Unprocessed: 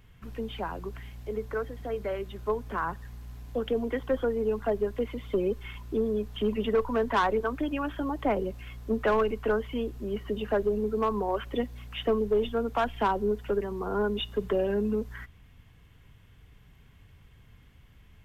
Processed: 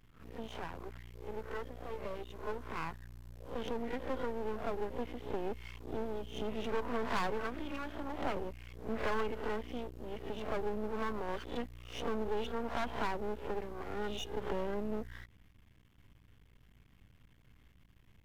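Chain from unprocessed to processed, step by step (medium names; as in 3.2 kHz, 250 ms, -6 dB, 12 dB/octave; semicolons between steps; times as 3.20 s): reverse spectral sustain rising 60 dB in 0.41 s; half-wave rectifier; hum 60 Hz, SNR 32 dB; trim -6 dB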